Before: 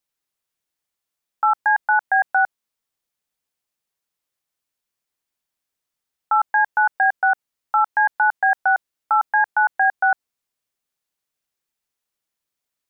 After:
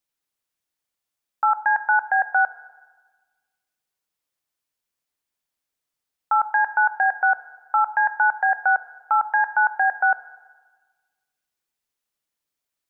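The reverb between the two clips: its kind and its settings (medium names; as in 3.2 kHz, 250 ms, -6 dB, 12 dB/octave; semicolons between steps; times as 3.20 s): FDN reverb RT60 1.4 s, low-frequency decay 0.75×, high-frequency decay 0.9×, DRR 11.5 dB; trim -1.5 dB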